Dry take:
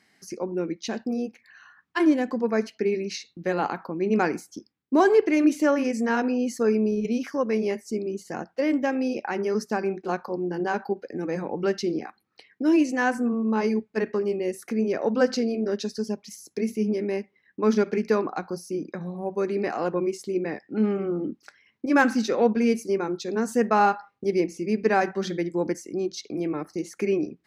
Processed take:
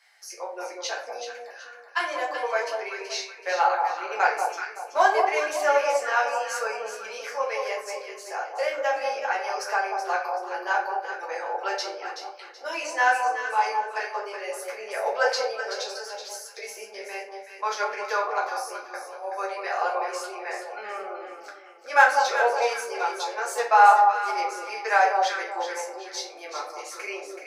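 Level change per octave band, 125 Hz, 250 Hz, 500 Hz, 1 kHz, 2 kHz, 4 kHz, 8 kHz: under -40 dB, -25.0 dB, -4.0 dB, +7.5 dB, +6.0 dB, +5.0 dB, +4.5 dB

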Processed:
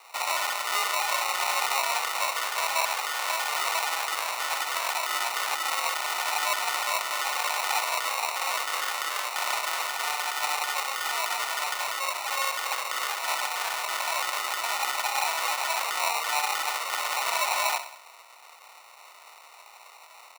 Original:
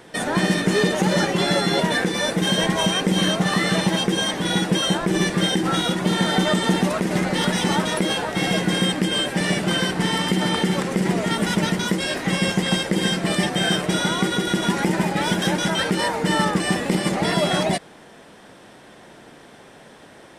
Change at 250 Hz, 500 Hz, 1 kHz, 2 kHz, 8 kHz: under -35 dB, -14.5 dB, -1.0 dB, -4.0 dB, -1.5 dB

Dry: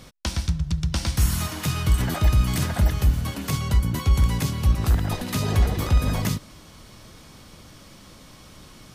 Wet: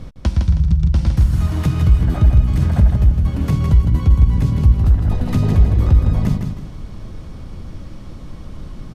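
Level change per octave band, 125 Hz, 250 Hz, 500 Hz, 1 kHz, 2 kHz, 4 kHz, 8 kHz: +8.5 dB, +7.0 dB, +2.5 dB, -1.0 dB, -4.0 dB, n/a, under -10 dB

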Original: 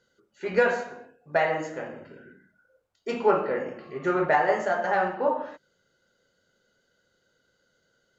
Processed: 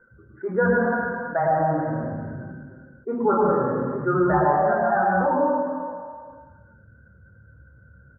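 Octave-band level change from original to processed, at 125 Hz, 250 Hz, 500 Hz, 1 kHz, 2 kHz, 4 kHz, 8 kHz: +13.5 dB, +9.5 dB, +3.5 dB, +5.5 dB, +1.5 dB, under -35 dB, n/a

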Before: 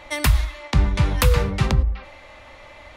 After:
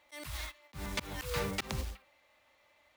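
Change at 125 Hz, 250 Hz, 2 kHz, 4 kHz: -22.5, -16.5, -13.0, -11.5 dB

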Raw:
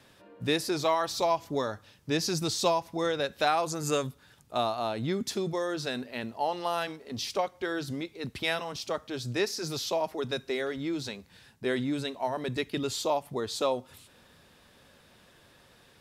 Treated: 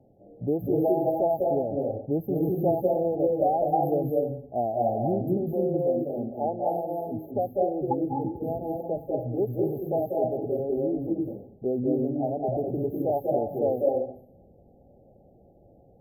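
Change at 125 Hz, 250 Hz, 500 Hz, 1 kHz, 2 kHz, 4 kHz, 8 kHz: +5.5 dB, +6.0 dB, +6.0 dB, +2.0 dB, under -40 dB, under -40 dB, under -40 dB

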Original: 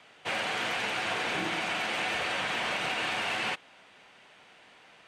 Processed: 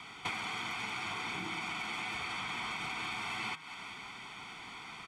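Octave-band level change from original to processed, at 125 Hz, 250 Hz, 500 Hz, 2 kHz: -3.0, -6.0, -14.0, -7.0 dB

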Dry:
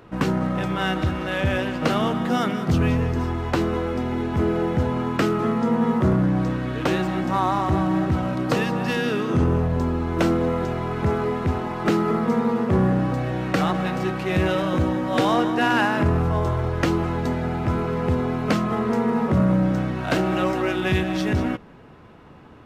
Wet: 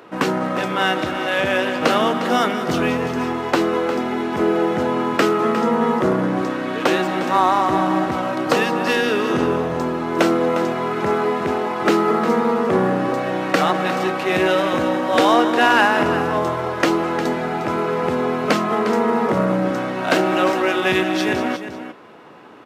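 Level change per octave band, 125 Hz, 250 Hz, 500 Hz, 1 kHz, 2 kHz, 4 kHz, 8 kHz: -7.0, +1.0, +6.0, +7.0, +7.0, +7.0, +7.0 dB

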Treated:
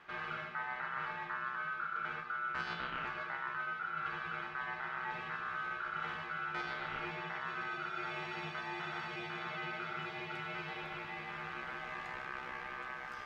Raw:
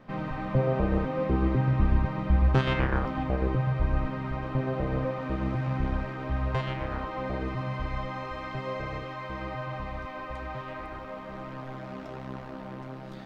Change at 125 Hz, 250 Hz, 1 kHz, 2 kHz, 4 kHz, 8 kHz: -25.5 dB, -20.0 dB, -4.5 dB, +1.0 dB, -2.5 dB, n/a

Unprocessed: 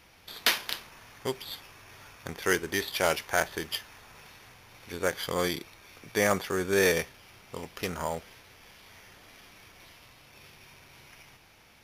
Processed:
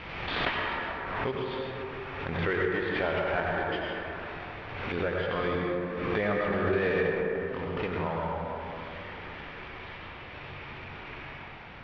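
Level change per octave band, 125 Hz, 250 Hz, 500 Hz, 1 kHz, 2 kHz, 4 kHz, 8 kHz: +6.0 dB, +3.0 dB, +1.5 dB, +3.0 dB, +0.5 dB, -6.0 dB, under -30 dB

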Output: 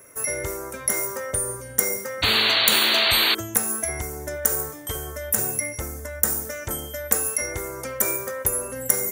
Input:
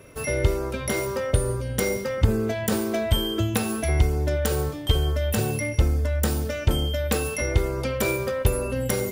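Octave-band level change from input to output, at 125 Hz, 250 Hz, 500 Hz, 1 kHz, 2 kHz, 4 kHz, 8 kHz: -13.5, -8.0, -5.0, +2.0, +5.0, +10.0, +9.0 dB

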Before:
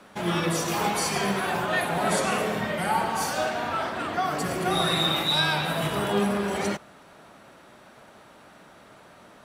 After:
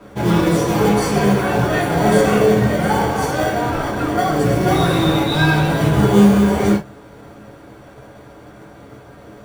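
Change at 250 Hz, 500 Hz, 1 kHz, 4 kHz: +14.5, +11.5, +6.5, +0.5 dB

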